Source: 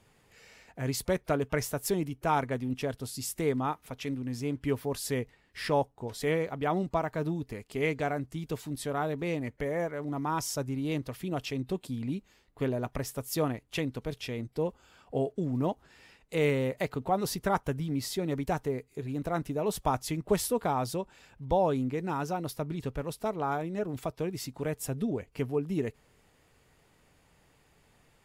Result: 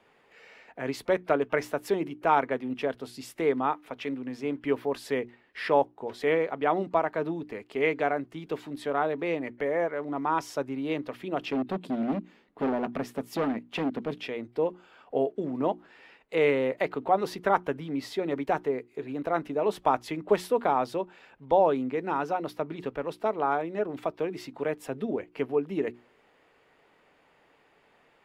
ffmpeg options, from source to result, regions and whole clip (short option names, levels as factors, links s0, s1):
-filter_complex "[0:a]asettb=1/sr,asplit=3[s0][s1][s2];[s0]atrim=end=11.424[s3];[s1]atrim=start=11.42:end=14.28,asetpts=PTS-STARTPTS,afade=t=in:d=0.004:c=qsin,afade=t=out:st=2.856:d=0.004:c=qsin,equalizer=f=210:w=1.2:g=12,asoftclip=type=hard:threshold=0.0531[s4];[s2]atrim=start=14.276[s5];[s3][s4]acrossfade=d=0.004:c1=hsin:c2=qsin[s6];[s6][s5]acrossfade=d=0.004:c1=qsin:c2=hsin,acrossover=split=240 3500:gain=0.112 1 0.126[s7][s8][s9];[s7][s8][s9]amix=inputs=3:normalize=0,bandreject=f=60:t=h:w=6,bandreject=f=120:t=h:w=6,bandreject=f=180:t=h:w=6,bandreject=f=240:t=h:w=6,bandreject=f=300:t=h:w=6,bandreject=f=360:t=h:w=6,volume=1.78"